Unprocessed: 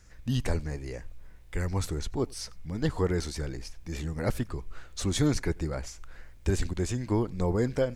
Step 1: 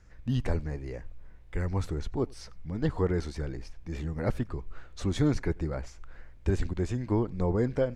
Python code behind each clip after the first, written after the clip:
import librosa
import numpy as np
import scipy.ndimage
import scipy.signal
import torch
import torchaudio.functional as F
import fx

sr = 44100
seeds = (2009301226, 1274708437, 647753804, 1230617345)

y = fx.lowpass(x, sr, hz=1900.0, slope=6)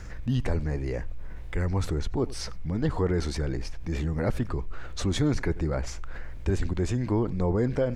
y = fx.env_flatten(x, sr, amount_pct=50)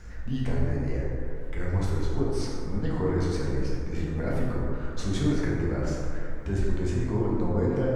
y = fx.rev_plate(x, sr, seeds[0], rt60_s=2.5, hf_ratio=0.35, predelay_ms=0, drr_db=-5.5)
y = y * 10.0 ** (-7.5 / 20.0)